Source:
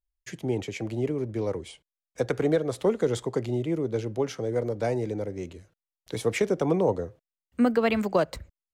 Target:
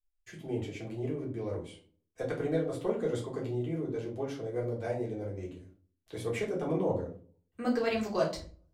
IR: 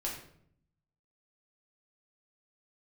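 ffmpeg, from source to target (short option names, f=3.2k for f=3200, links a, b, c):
-filter_complex "[0:a]asetnsamples=n=441:p=0,asendcmd='7.65 equalizer g 13',equalizer=f=5.6k:w=1.5:g=-4[a];[1:a]atrim=start_sample=2205,asetrate=83790,aresample=44100[b];[a][b]afir=irnorm=-1:irlink=0,volume=-4dB"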